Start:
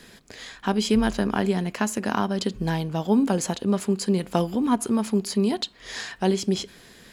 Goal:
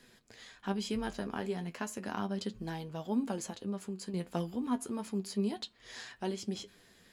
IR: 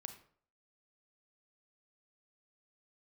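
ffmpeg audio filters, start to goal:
-filter_complex "[0:a]asettb=1/sr,asplit=3[link_01][link_02][link_03];[link_01]atrim=end=3.414[link_04];[link_02]atrim=start=3.41:end=4.14,asetpts=PTS-STARTPTS,afade=type=in:duration=0.004:curve=qsin,afade=type=out:start_time=0.726:duration=0.004:curve=qsin,acompressor=threshold=-24dB:ratio=6[link_05];[link_03]atrim=start=4.136[link_06];[link_04][link_05]acrossfade=duration=0.004:curve1=hsin:curve2=qsin[link_07];[link_07][link_06]acrossfade=duration=0.004:curve1=qsin:curve2=hsin,flanger=delay=7.8:depth=4.8:regen=44:speed=0.33:shape=triangular,volume=-8.5dB"

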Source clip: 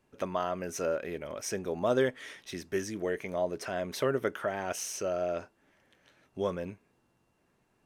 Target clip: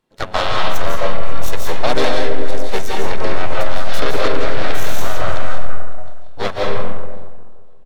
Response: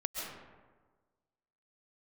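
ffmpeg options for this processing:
-filter_complex "[0:a]aecho=1:1:533|1066:0.106|0.0244,aeval=exprs='0.188*(cos(1*acos(clip(val(0)/0.188,-1,1)))-cos(1*PI/2))+0.00668*(cos(2*acos(clip(val(0)/0.188,-1,1)))-cos(2*PI/2))+0.00133*(cos(3*acos(clip(val(0)/0.188,-1,1)))-cos(3*PI/2))+0.0188*(cos(7*acos(clip(val(0)/0.188,-1,1)))-cos(7*PI/2))+0.0335*(cos(8*acos(clip(val(0)/0.188,-1,1)))-cos(8*PI/2))':channel_layout=same,equalizer=frequency=3600:width_type=o:width=0.21:gain=9.5[link_01];[1:a]atrim=start_sample=2205,asetrate=36603,aresample=44100[link_02];[link_01][link_02]afir=irnorm=-1:irlink=0,asplit=3[link_03][link_04][link_05];[link_04]asetrate=52444,aresample=44100,atempo=0.840896,volume=-2dB[link_06];[link_05]asetrate=66075,aresample=44100,atempo=0.66742,volume=-10dB[link_07];[link_03][link_06][link_07]amix=inputs=3:normalize=0,alimiter=level_in=9dB:limit=-1dB:release=50:level=0:latency=1,volume=-1dB"

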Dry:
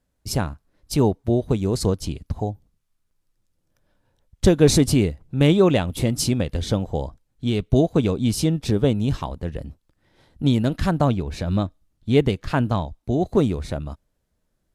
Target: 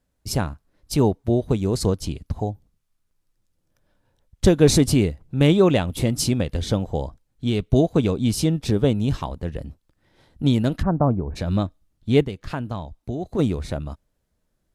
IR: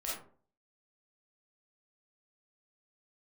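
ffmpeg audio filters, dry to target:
-filter_complex "[0:a]asplit=3[link_01][link_02][link_03];[link_01]afade=type=out:start_time=10.81:duration=0.02[link_04];[link_02]lowpass=frequency=1200:width=0.5412,lowpass=frequency=1200:width=1.3066,afade=type=in:start_time=10.81:duration=0.02,afade=type=out:start_time=11.35:duration=0.02[link_05];[link_03]afade=type=in:start_time=11.35:duration=0.02[link_06];[link_04][link_05][link_06]amix=inputs=3:normalize=0,asplit=3[link_07][link_08][link_09];[link_07]afade=type=out:start_time=12.23:duration=0.02[link_10];[link_08]acompressor=threshold=-28dB:ratio=2.5,afade=type=in:start_time=12.23:duration=0.02,afade=type=out:start_time=13.38:duration=0.02[link_11];[link_09]afade=type=in:start_time=13.38:duration=0.02[link_12];[link_10][link_11][link_12]amix=inputs=3:normalize=0"

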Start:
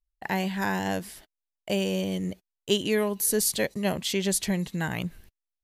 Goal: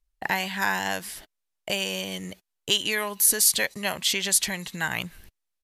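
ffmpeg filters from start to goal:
ffmpeg -i in.wav -filter_complex "[0:a]acrossover=split=830[link_01][link_02];[link_01]acompressor=threshold=-41dB:ratio=8[link_03];[link_03][link_02]amix=inputs=2:normalize=0,aresample=32000,aresample=44100,volume=6.5dB" out.wav

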